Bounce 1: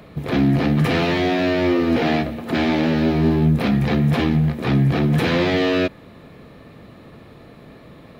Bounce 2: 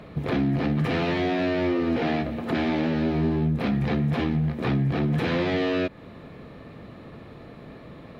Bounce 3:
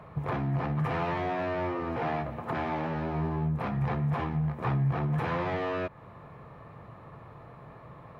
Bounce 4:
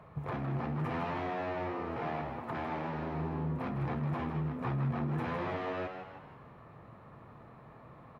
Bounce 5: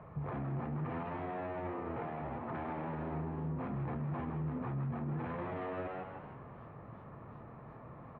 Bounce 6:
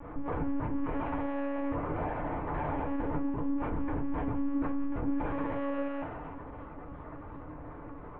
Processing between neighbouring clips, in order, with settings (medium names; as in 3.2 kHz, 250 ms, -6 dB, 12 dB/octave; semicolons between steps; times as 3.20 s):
low-pass 3.8 kHz 6 dB/octave; compression 2.5:1, threshold -24 dBFS, peak gain reduction 8 dB
graphic EQ 125/250/1000/4000 Hz +8/-8/+12/-8 dB; trim -7.5 dB
frequency-shifting echo 158 ms, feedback 45%, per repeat +99 Hz, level -7.5 dB; trim -6 dB
peak limiter -34 dBFS, peak gain reduction 10.5 dB; distance through air 490 m; modulated delay 382 ms, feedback 64%, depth 213 cents, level -21 dB; trim +3.5 dB
pre-echo 236 ms -18 dB; monotone LPC vocoder at 8 kHz 280 Hz; FDN reverb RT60 0.31 s, low-frequency decay 0.95×, high-frequency decay 0.45×, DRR 2 dB; trim +4 dB